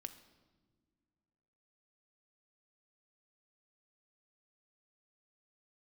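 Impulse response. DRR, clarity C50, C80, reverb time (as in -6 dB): 9.0 dB, 12.5 dB, 14.5 dB, no single decay rate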